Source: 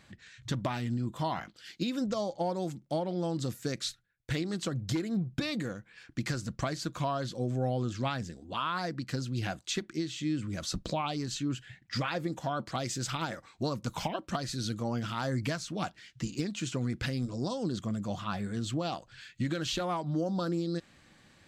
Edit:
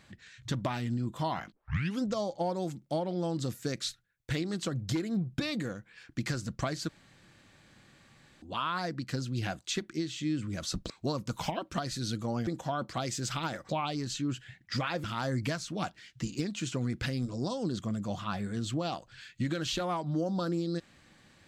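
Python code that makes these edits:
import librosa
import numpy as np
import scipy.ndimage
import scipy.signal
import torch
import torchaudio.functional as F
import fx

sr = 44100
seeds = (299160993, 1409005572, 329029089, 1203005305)

y = fx.edit(x, sr, fx.tape_start(start_s=1.52, length_s=0.5),
    fx.room_tone_fill(start_s=6.89, length_s=1.53),
    fx.swap(start_s=10.9, length_s=1.35, other_s=13.47, other_length_s=1.57), tone=tone)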